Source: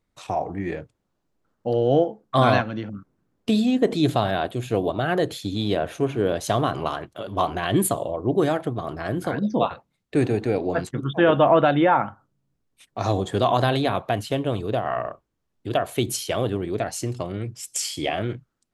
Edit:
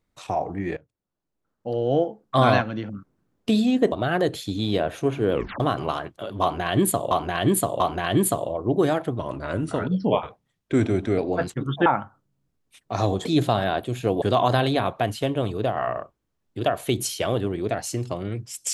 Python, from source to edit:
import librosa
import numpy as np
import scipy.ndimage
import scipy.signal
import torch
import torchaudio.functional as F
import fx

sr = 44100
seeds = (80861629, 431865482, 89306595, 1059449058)

y = fx.edit(x, sr, fx.fade_in_from(start_s=0.77, length_s=1.69, floor_db=-20.0),
    fx.move(start_s=3.92, length_s=0.97, to_s=13.31),
    fx.tape_stop(start_s=6.29, length_s=0.28),
    fx.repeat(start_s=7.39, length_s=0.69, count=3),
    fx.speed_span(start_s=8.78, length_s=1.77, speed=0.89),
    fx.cut(start_s=11.23, length_s=0.69), tone=tone)